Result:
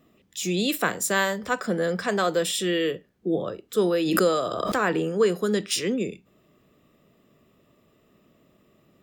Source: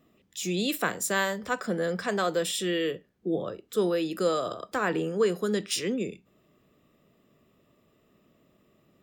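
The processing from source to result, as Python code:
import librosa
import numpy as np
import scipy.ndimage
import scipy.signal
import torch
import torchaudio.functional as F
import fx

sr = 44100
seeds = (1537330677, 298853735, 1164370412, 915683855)

y = fx.pre_swell(x, sr, db_per_s=31.0, at=(3.96, 4.86))
y = y * 10.0 ** (3.5 / 20.0)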